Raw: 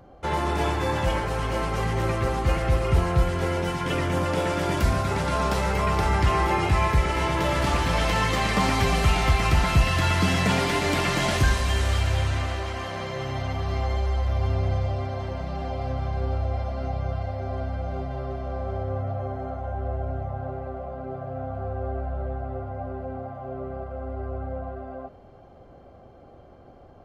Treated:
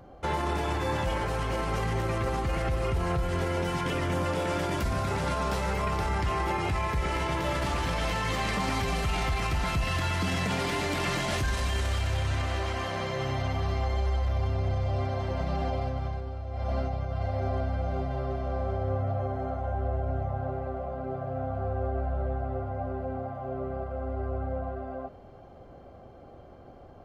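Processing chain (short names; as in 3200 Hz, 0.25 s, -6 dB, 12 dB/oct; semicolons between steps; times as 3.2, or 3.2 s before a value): 15.3–17.61 negative-ratio compressor -29 dBFS, ratio -0.5; limiter -20.5 dBFS, peak gain reduction 10.5 dB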